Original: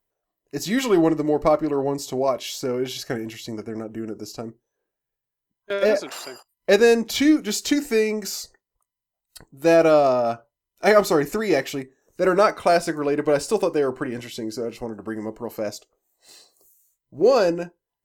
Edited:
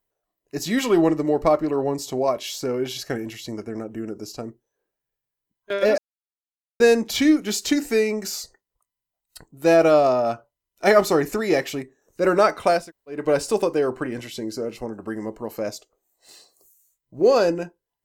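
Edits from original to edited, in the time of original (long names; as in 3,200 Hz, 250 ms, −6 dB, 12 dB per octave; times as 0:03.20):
0:05.98–0:06.80: silence
0:12.80–0:13.18: fill with room tone, crossfade 0.24 s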